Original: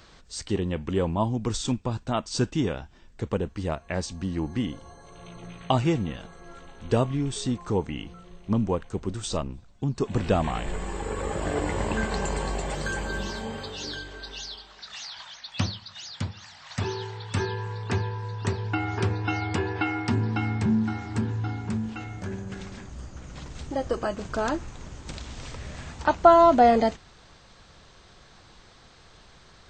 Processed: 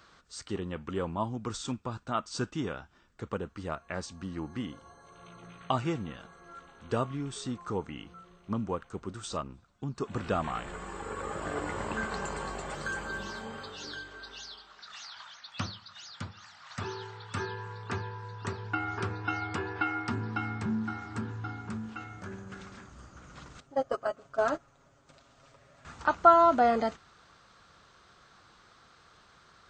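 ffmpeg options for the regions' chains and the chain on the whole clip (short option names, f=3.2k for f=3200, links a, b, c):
-filter_complex "[0:a]asettb=1/sr,asplit=3[a][b][c];[a]atrim=end=23.604[d];[b]atrim=start=23.6:end=25.85,asetpts=PTS-STARTPTS,afade=t=in:d=0.004:c=qsin,afade=t=out:st=2.246:d=0.004:c=qsin,agate=range=-15dB:threshold=-27dB:ratio=16:release=100:detection=peak,equalizer=f=620:t=o:w=0.47:g=11,aecho=1:1:7.3:0.63,atrim=end_sample=99225[e];[c]atrim=start=25.846[f];[d][e]acrossfade=d=0.004:c1=hsin:c2=qsin[g];[g][f]acrossfade=d=0.004:c1=qsin:c2=hsin,highpass=f=100:p=1,equalizer=f=1.3k:w=3.5:g=13.5,bandreject=f=1.3k:w=18,volume=-7.5dB"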